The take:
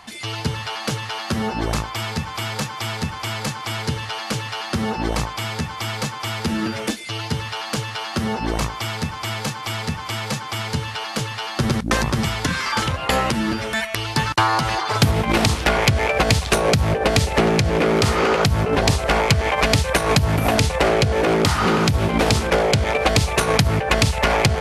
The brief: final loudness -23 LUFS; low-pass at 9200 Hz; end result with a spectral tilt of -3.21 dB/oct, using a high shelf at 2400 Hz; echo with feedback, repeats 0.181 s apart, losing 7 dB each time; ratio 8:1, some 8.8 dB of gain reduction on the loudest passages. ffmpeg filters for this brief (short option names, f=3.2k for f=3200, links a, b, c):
-af "lowpass=9.2k,highshelf=f=2.4k:g=9,acompressor=threshold=-18dB:ratio=8,aecho=1:1:181|362|543|724|905:0.447|0.201|0.0905|0.0407|0.0183,volume=-1.5dB"